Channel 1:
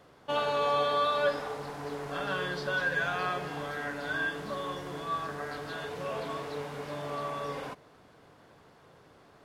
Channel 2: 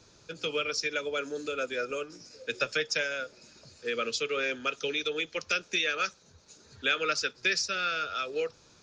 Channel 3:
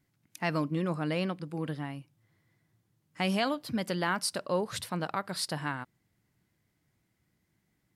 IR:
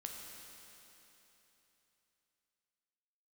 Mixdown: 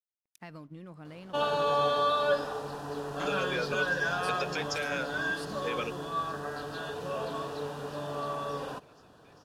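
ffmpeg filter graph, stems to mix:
-filter_complex "[0:a]equalizer=f=2100:t=o:w=0.23:g=-13.5,bandreject=f=2200:w=8.6,adelay=1050,volume=1.12[s0];[1:a]alimiter=level_in=1.06:limit=0.0631:level=0:latency=1:release=166,volume=0.944,adelay=1800,volume=1.06[s1];[2:a]lowshelf=f=92:g=10.5,acompressor=threshold=0.0316:ratio=6,aeval=exprs='sgn(val(0))*max(abs(val(0))-0.00141,0)':c=same,volume=0.266,asplit=2[s2][s3];[s3]apad=whole_len=468653[s4];[s1][s4]sidechaingate=range=0.0224:threshold=0.00126:ratio=16:detection=peak[s5];[s0][s5][s2]amix=inputs=3:normalize=0"

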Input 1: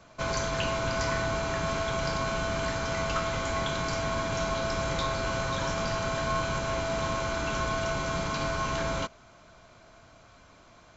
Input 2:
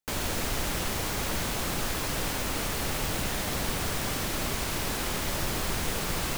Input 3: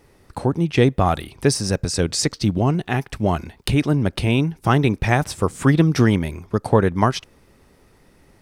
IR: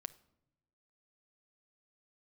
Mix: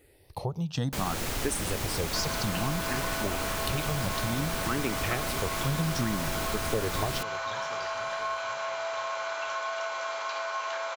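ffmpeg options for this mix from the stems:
-filter_complex "[0:a]highpass=f=620:w=0.5412,highpass=f=620:w=1.3066,highshelf=f=6600:g=-11.5,adelay=1950,volume=1.26[s0];[1:a]adelay=850,volume=1.33[s1];[2:a]highshelf=f=4800:g=8,asplit=2[s2][s3];[s3]afreqshift=0.59[s4];[s2][s4]amix=inputs=2:normalize=1,volume=0.447,asplit=3[s5][s6][s7];[s6]volume=0.447[s8];[s7]volume=0.119[s9];[3:a]atrim=start_sample=2205[s10];[s8][s10]afir=irnorm=-1:irlink=0[s11];[s9]aecho=0:1:488|976|1464|1952|2440|2928|3416|3904:1|0.54|0.292|0.157|0.085|0.0459|0.0248|0.0134[s12];[s0][s1][s5][s11][s12]amix=inputs=5:normalize=0,acompressor=threshold=0.0282:ratio=2"

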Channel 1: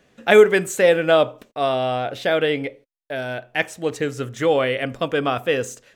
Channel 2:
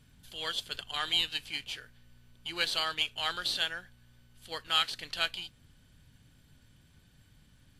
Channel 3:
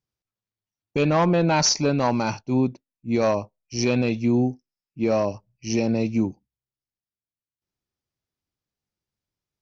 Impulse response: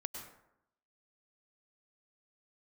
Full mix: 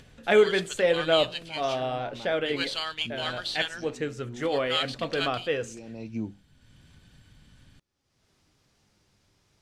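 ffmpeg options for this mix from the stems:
-filter_complex "[0:a]flanger=delay=4.7:depth=7:regen=-69:speed=0.96:shape=triangular,volume=0.668,asplit=2[s0][s1];[1:a]volume=0.944[s2];[2:a]acompressor=threshold=0.0178:ratio=2,flanger=delay=3.5:depth=6.9:regen=79:speed=0.38:shape=sinusoidal,volume=1.12[s3];[s1]apad=whole_len=424102[s4];[s3][s4]sidechaincompress=threshold=0.00794:ratio=4:attack=6.3:release=403[s5];[s0][s2][s5]amix=inputs=3:normalize=0,lowpass=8200,acompressor=mode=upward:threshold=0.00501:ratio=2.5"

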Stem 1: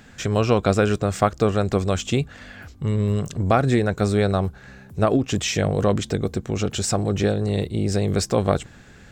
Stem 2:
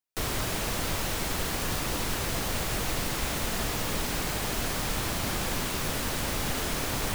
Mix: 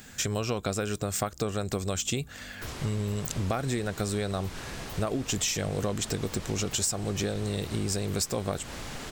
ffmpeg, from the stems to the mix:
-filter_complex "[0:a]aemphasis=mode=production:type=75fm,volume=0.75[s0];[1:a]lowpass=8100,adelay=2450,volume=0.376[s1];[s0][s1]amix=inputs=2:normalize=0,acompressor=threshold=0.0501:ratio=6"

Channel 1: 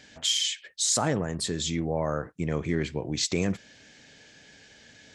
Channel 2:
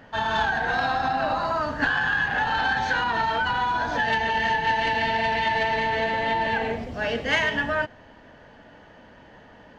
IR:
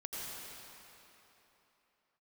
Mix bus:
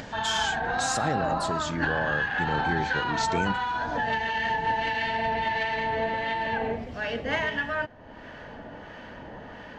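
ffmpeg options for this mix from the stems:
-filter_complex "[0:a]volume=0.75[s0];[1:a]acrossover=split=1200[s1][s2];[s1]aeval=exprs='val(0)*(1-0.5/2+0.5/2*cos(2*PI*1.5*n/s))':c=same[s3];[s2]aeval=exprs='val(0)*(1-0.5/2-0.5/2*cos(2*PI*1.5*n/s))':c=same[s4];[s3][s4]amix=inputs=2:normalize=0,volume=0.891[s5];[s0][s5]amix=inputs=2:normalize=0,highshelf=f=4900:g=-7,acompressor=mode=upward:threshold=0.0282:ratio=2.5"

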